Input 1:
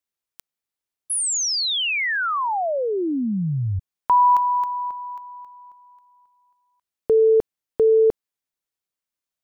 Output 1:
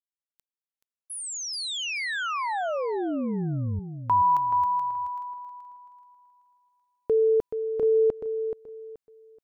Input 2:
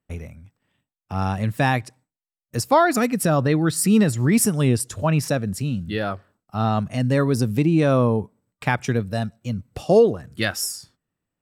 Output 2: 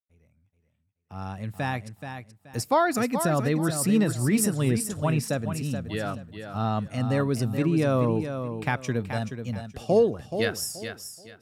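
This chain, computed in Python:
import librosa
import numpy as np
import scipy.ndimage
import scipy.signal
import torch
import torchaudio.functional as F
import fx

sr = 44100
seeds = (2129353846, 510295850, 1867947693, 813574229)

y = fx.fade_in_head(x, sr, length_s=2.58)
y = fx.echo_feedback(y, sr, ms=428, feedback_pct=26, wet_db=-8.5)
y = y * librosa.db_to_amplitude(-5.5)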